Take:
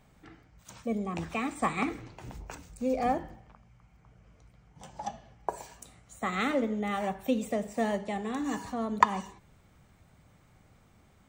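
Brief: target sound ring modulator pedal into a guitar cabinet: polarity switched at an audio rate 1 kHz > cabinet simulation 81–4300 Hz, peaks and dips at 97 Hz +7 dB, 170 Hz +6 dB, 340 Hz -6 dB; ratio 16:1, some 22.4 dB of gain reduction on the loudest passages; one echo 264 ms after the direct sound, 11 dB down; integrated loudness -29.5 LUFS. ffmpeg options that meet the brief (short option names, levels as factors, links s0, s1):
-af "acompressor=threshold=0.0112:ratio=16,aecho=1:1:264:0.282,aeval=exprs='val(0)*sgn(sin(2*PI*1000*n/s))':c=same,highpass=81,equalizer=f=97:t=q:w=4:g=7,equalizer=f=170:t=q:w=4:g=6,equalizer=f=340:t=q:w=4:g=-6,lowpass=f=4300:w=0.5412,lowpass=f=4300:w=1.3066,volume=5.62"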